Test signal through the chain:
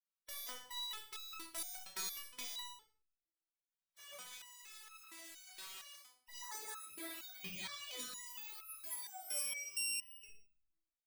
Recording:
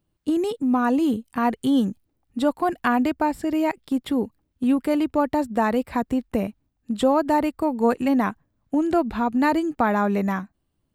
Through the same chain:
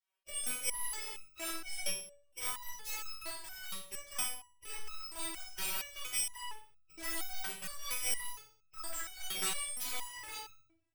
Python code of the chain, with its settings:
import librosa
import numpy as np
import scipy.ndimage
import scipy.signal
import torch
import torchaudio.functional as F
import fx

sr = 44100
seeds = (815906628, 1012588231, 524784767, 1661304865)

p1 = np.r_[np.sort(x[:len(x) // 16 * 16].reshape(-1, 16), axis=1).ravel(), x[len(x) // 16 * 16:]]
p2 = fx.spec_gate(p1, sr, threshold_db=-25, keep='weak')
p3 = p2 + fx.room_flutter(p2, sr, wall_m=10.5, rt60_s=0.39, dry=0)
p4 = fx.room_shoebox(p3, sr, seeds[0], volume_m3=590.0, walls='furnished', distance_m=2.8)
p5 = fx.resonator_held(p4, sr, hz=4.3, low_hz=190.0, high_hz=1300.0)
y = p5 * 10.0 ** (7.5 / 20.0)